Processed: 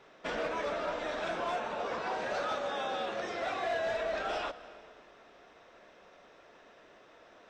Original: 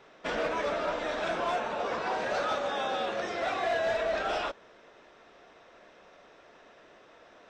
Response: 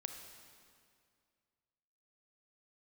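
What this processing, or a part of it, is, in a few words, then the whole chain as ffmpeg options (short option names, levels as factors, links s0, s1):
ducked reverb: -filter_complex "[0:a]asplit=3[s0][s1][s2];[1:a]atrim=start_sample=2205[s3];[s1][s3]afir=irnorm=-1:irlink=0[s4];[s2]apad=whole_len=330361[s5];[s4][s5]sidechaincompress=threshold=0.0224:ratio=8:attack=16:release=321,volume=0.841[s6];[s0][s6]amix=inputs=2:normalize=0,volume=0.501"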